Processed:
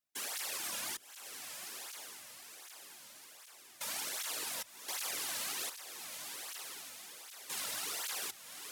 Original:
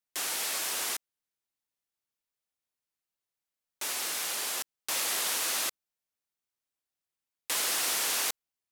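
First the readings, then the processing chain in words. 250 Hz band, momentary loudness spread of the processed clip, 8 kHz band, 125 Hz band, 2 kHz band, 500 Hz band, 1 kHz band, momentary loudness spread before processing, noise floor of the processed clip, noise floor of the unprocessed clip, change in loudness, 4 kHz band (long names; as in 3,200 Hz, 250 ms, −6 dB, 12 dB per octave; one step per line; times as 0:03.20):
−6.0 dB, 14 LU, −7.5 dB, can't be measured, −7.5 dB, −7.5 dB, −7.5 dB, 8 LU, −57 dBFS, below −85 dBFS, −10.0 dB, −7.5 dB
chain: sub-octave generator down 2 octaves, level −6 dB
brickwall limiter −28.5 dBFS, peak gain reduction 10.5 dB
hard clipping −33.5 dBFS, distortion −17 dB
random phases in short frames
feedback delay with all-pass diffusion 1,107 ms, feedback 51%, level −6 dB
through-zero flanger with one copy inverted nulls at 1.3 Hz, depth 2.8 ms
level +2 dB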